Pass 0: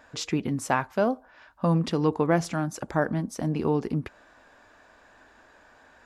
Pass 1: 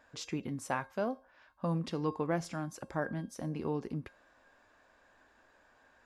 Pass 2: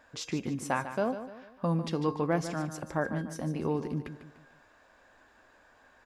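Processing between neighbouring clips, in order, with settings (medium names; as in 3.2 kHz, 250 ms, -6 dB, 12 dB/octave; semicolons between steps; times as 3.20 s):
feedback comb 540 Hz, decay 0.35 s, mix 70%
feedback delay 148 ms, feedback 41%, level -11 dB; trim +4 dB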